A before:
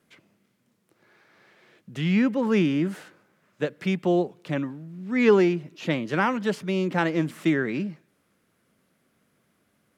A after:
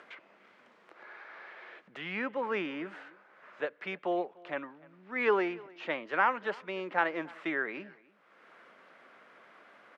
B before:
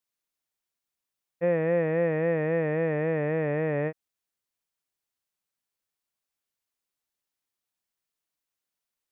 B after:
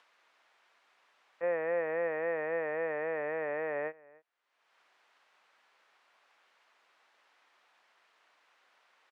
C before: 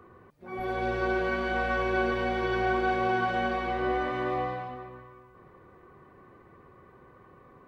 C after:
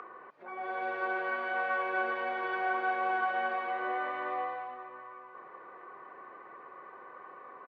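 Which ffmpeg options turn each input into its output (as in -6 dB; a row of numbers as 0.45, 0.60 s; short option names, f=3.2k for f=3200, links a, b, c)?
-filter_complex "[0:a]acompressor=mode=upward:threshold=-33dB:ratio=2.5,highpass=700,lowpass=2k,asplit=2[a][b];[b]adelay=297.4,volume=-23dB,highshelf=f=4k:g=-6.69[c];[a][c]amix=inputs=2:normalize=0"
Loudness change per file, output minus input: -8.5, -7.0, -4.0 LU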